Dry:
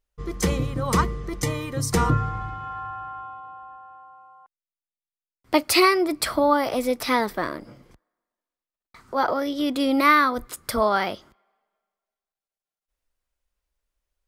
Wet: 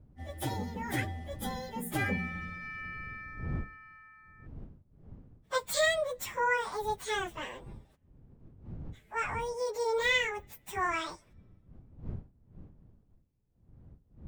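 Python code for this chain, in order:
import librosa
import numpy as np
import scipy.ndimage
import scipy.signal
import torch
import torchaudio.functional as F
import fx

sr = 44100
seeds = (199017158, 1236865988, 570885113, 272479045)

y = fx.pitch_bins(x, sr, semitones=9.0)
y = fx.dmg_wind(y, sr, seeds[0], corner_hz=130.0, level_db=-40.0)
y = y * 10.0 ** (-8.0 / 20.0)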